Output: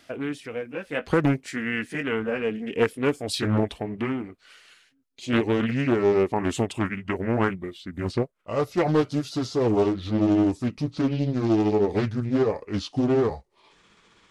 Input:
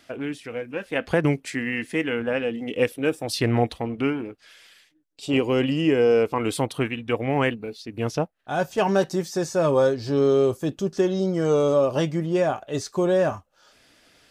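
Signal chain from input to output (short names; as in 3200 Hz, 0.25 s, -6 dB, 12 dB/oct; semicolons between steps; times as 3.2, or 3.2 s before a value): gliding pitch shift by -6.5 st starting unshifted; Doppler distortion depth 0.5 ms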